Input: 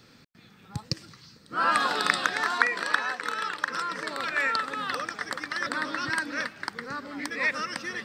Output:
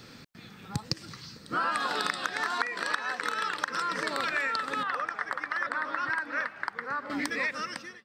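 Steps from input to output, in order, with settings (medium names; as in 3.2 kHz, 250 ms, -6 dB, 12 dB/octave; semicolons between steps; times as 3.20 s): fade out at the end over 0.95 s; 4.83–7.10 s: three-band isolator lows -13 dB, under 590 Hz, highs -17 dB, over 2.1 kHz; compression 6:1, threshold -33 dBFS, peak gain reduction 17 dB; trim +6 dB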